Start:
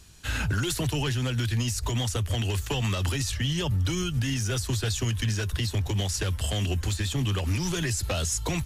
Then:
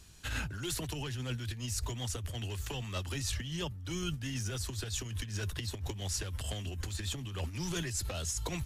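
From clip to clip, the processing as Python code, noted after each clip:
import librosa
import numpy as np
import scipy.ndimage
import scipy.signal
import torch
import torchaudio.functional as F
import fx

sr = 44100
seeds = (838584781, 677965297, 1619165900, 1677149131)

y = fx.over_compress(x, sr, threshold_db=-29.0, ratio=-0.5)
y = y * librosa.db_to_amplitude(-7.0)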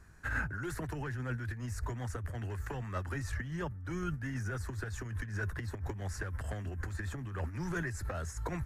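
y = fx.high_shelf_res(x, sr, hz=2300.0, db=-11.0, q=3.0)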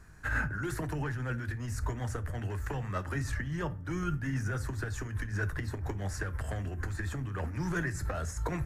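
y = fx.room_shoebox(x, sr, seeds[0], volume_m3=290.0, walls='furnished', distance_m=0.49)
y = y * librosa.db_to_amplitude(3.0)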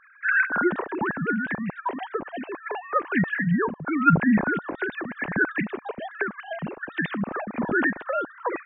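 y = fx.sine_speech(x, sr)
y = y * librosa.db_to_amplitude(8.0)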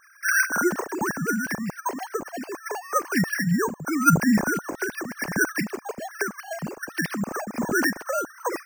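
y = np.repeat(scipy.signal.resample_poly(x, 1, 6), 6)[:len(x)]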